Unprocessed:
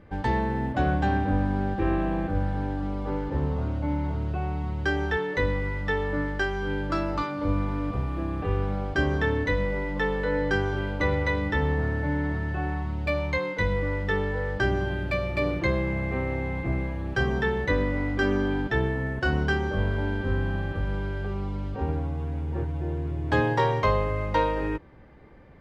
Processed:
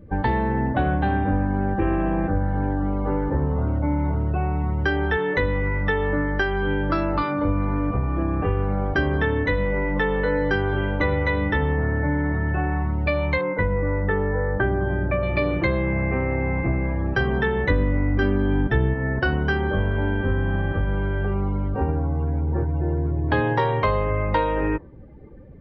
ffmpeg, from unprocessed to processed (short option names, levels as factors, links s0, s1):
-filter_complex "[0:a]asettb=1/sr,asplit=3[s0][s1][s2];[s0]atrim=end=13.414[s3];[s1]atrim=start=13.41:end=15.23,asetpts=PTS-STARTPTS,afade=t=in:d=0.004:c=qsin,afade=t=out:st=1.816:d=0.004:c=qsin,lowpass=1700[s4];[s2]atrim=start=15.226[s5];[s3][s4]acrossfade=d=0.004:c1=hsin:c2=qsin[s6];[s6][s5]acrossfade=d=0.004:c1=qsin:c2=hsin,asettb=1/sr,asplit=3[s7][s8][s9];[s7]atrim=end=17.704[s10];[s8]atrim=start=17.7:end=18.94,asetpts=PTS-STARTPTS,afade=t=in:d=0.004:c=qsin,afade=t=out:st=1.236:d=0.004:c=qsin,lowshelf=f=240:g=9.5[s11];[s9]atrim=start=18.936[s12];[s10][s11]acrossfade=d=0.004:c1=hsin:c2=qsin[s13];[s13][s12]acrossfade=d=0.004:c1=qsin:c2=hsin,lowpass=4400,afftdn=nr=18:nf=-48,acompressor=threshold=0.0398:ratio=3,volume=2.66"